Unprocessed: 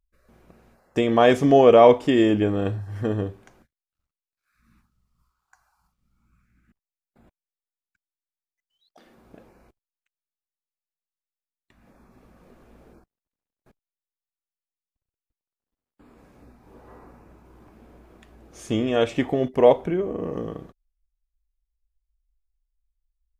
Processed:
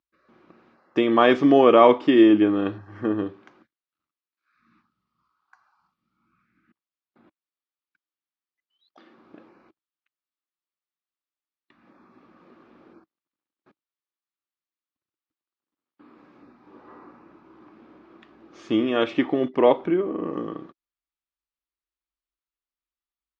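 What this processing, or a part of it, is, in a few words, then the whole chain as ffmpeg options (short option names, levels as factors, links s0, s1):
kitchen radio: -filter_complex "[0:a]highpass=220,equalizer=f=320:t=q:w=4:g=7,equalizer=f=460:t=q:w=4:g=-5,equalizer=f=680:t=q:w=4:g=-5,equalizer=f=1200:t=q:w=4:g=6,lowpass=f=4500:w=0.5412,lowpass=f=4500:w=1.3066,asettb=1/sr,asplit=3[s0][s1][s2];[s0]atrim=end=2.784[s3];[s1]atrim=start=2.78:end=3.18,asetpts=PTS-STARTPTS,afade=t=in:d=0.004:c=qsin,afade=t=out:st=0.396:d=0.004:c=qsin,equalizer=f=3800:w=1.5:g=-8[s4];[s2]atrim=start=3.176[s5];[s3][s4]acrossfade=d=0.004:c1=hsin:c2=qsin[s6];[s6][s5]acrossfade=d=0.004:c1=qsin:c2=hsin,volume=1.12"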